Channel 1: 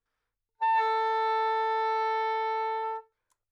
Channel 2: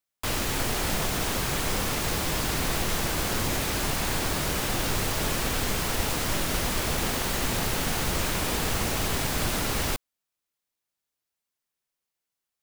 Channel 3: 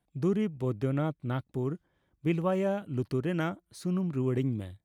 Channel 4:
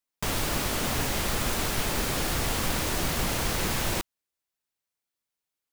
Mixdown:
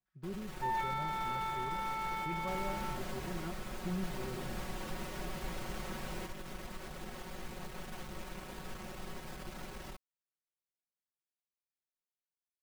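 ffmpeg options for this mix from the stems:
-filter_complex "[0:a]highpass=1.5k,volume=-3dB[a];[1:a]aeval=exprs='(tanh(12.6*val(0)+0.7)-tanh(0.7))/12.6':c=same,volume=-19dB,asplit=3[b][c][d];[b]atrim=end=3.42,asetpts=PTS-STARTPTS,afade=t=out:st=3.416:d=0.004:c=hsin[e];[c]atrim=start=3.42:end=4.03,asetpts=PTS-STARTPTS,volume=0[f];[d]atrim=start=4.03,asetpts=PTS-STARTPTS,afade=t=in:d=0.004:c=hsin[g];[e][f][g]concat=n=3:v=0:a=1[h];[2:a]volume=-19.5dB[i];[3:a]adelay=2250,volume=-15.5dB[j];[h][i]amix=inputs=2:normalize=0,dynaudnorm=f=110:g=9:m=7dB,alimiter=level_in=10.5dB:limit=-24dB:level=0:latency=1,volume=-10.5dB,volume=0dB[k];[a][j][k]amix=inputs=3:normalize=0,highshelf=f=3k:g=-10,aecho=1:1:5.4:0.81"

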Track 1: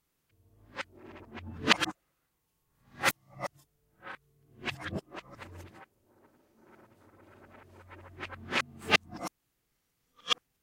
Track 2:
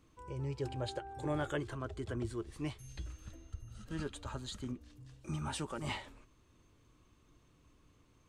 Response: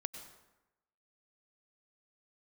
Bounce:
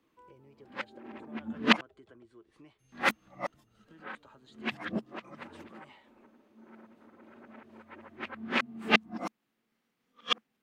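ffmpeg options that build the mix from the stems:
-filter_complex "[0:a]equalizer=f=220:t=o:w=0.32:g=13.5,volume=1.5dB,asplit=3[a][b][c];[a]atrim=end=1.81,asetpts=PTS-STARTPTS,afade=t=out:st=1.806:d=0.004:c=hsin[d];[b]atrim=start=1.81:end=2.92,asetpts=PTS-STARTPTS,volume=0[e];[c]atrim=start=2.92,asetpts=PTS-STARTPTS,afade=t=in:d=0.004:c=hsin[f];[d][e][f]concat=n=3:v=0:a=1[g];[1:a]acompressor=threshold=-47dB:ratio=8,volume=-3.5dB[h];[g][h]amix=inputs=2:normalize=0,acrossover=split=180 3900:gain=0.1 1 0.224[i][j][k];[i][j][k]amix=inputs=3:normalize=0"

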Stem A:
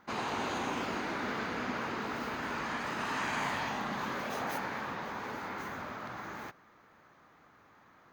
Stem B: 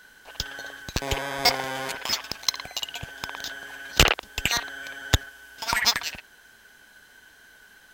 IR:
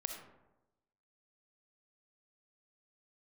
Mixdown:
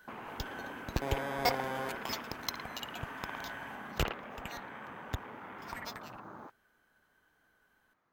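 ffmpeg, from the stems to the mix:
-filter_complex "[0:a]afwtdn=0.01,acompressor=threshold=-44dB:ratio=4,volume=-0.5dB[a];[1:a]equalizer=f=5.7k:w=0.36:g=-11.5,volume=-3.5dB,afade=t=out:st=3.54:d=0.61:silence=0.266073[b];[a][b]amix=inputs=2:normalize=0"

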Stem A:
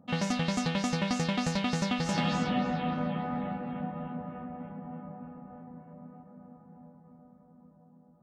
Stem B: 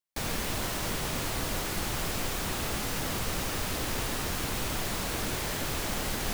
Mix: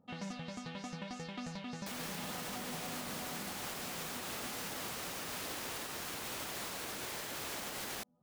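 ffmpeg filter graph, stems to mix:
-filter_complex "[0:a]flanger=delay=2.2:depth=6.8:regen=48:speed=0.81:shape=sinusoidal,volume=-4.5dB[a];[1:a]highpass=f=370:p=1,adelay=1700,volume=-2dB[b];[a][b]amix=inputs=2:normalize=0,alimiter=level_in=7.5dB:limit=-24dB:level=0:latency=1:release=279,volume=-7.5dB"

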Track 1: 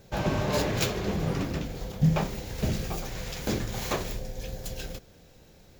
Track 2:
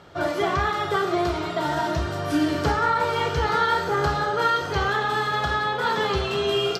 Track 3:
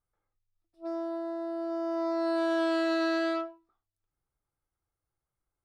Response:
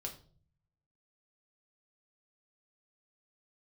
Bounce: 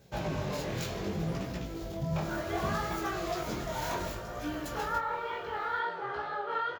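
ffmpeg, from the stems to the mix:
-filter_complex "[0:a]highpass=46,alimiter=limit=-21dB:level=0:latency=1:release=82,volume=-4dB,asplit=2[a][b];[b]volume=-6dB[c];[1:a]acrossover=split=360 3400:gain=0.224 1 0.0794[d][e][f];[d][e][f]amix=inputs=3:normalize=0,flanger=delay=17:depth=7.8:speed=2.1,adelay=2100,volume=-5dB[g];[2:a]asplit=2[h][i];[i]afreqshift=1.6[j];[h][j]amix=inputs=2:normalize=1,volume=-5.5dB[k];[3:a]atrim=start_sample=2205[l];[c][l]afir=irnorm=-1:irlink=0[m];[a][g][k][m]amix=inputs=4:normalize=0,flanger=delay=16:depth=7.6:speed=0.66"

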